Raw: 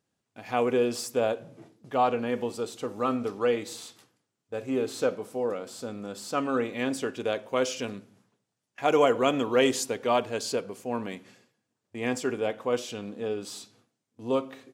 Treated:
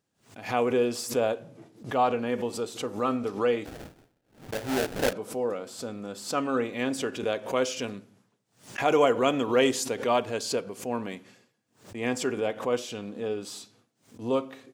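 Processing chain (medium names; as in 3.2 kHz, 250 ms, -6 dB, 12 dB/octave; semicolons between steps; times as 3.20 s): 3.65–5.13 s: sample-rate reducer 1.1 kHz, jitter 20%; swell ahead of each attack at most 150 dB/s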